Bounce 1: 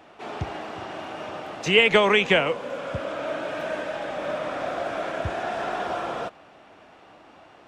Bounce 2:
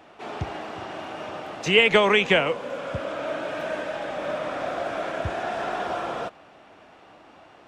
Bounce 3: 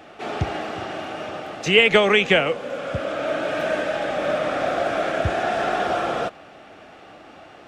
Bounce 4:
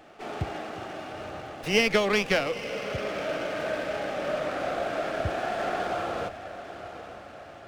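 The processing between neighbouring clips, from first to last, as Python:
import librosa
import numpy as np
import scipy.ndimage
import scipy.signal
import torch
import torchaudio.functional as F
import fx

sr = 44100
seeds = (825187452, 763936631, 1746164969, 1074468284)

y1 = x
y2 = fx.notch(y1, sr, hz=980.0, q=5.7)
y2 = fx.rider(y2, sr, range_db=4, speed_s=2.0)
y2 = F.gain(torch.from_numpy(y2), 2.5).numpy()
y3 = fx.echo_diffused(y2, sr, ms=916, feedback_pct=52, wet_db=-12.0)
y3 = fx.running_max(y3, sr, window=5)
y3 = F.gain(torch.from_numpy(y3), -7.0).numpy()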